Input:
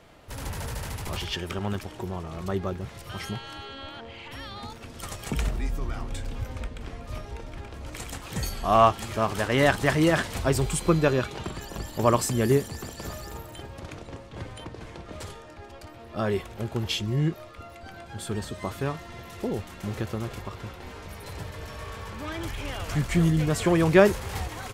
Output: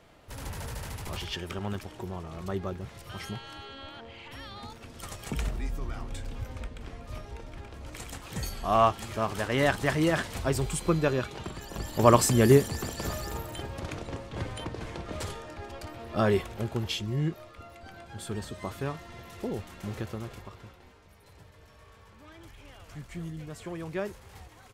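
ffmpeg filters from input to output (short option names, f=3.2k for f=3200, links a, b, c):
-af "volume=3dB,afade=t=in:st=11.63:d=0.52:silence=0.446684,afade=t=out:st=16.19:d=0.75:silence=0.446684,afade=t=out:st=19.93:d=1.06:silence=0.237137"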